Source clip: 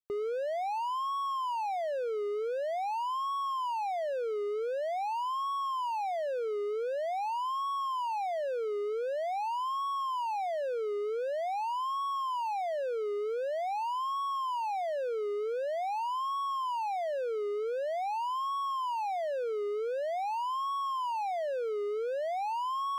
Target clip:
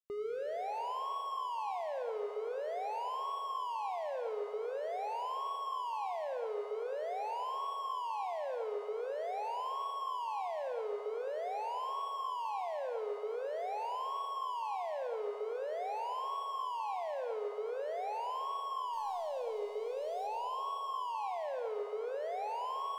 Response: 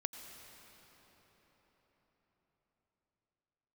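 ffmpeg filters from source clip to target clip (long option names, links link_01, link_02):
-filter_complex "[0:a]asettb=1/sr,asplit=3[link_01][link_02][link_03];[link_01]atrim=end=18.934[link_04];[link_02]atrim=start=18.93:end=20.27,asetpts=PTS-STARTPTS,afade=type=in:duration=0.004:curve=qsin,afade=type=out:start_time=1.336:duration=0.004:curve=qsin,aeval=exprs='0.0422*(cos(1*acos(clip(val(0)/0.0422,-1,1)))-cos(1*PI/2))+0.00075*(cos(4*acos(clip(val(0)/0.0422,-1,1)))-cos(4*PI/2))+0.00266*(cos(5*acos(clip(val(0)/0.0422,-1,1)))-cos(5*PI/2))':channel_layout=same[link_05];[link_03]atrim=start=20.266[link_06];[link_04][link_05]acrossfade=duration=0.004:curve1=hsin:curve2=qsin[link_07];[link_07][link_06]acrossfade=duration=0.004:curve1=qsin:curve2=hsin[link_08];[1:a]atrim=start_sample=2205,asetrate=74970,aresample=44100[link_09];[link_08][link_09]afir=irnorm=-1:irlink=0"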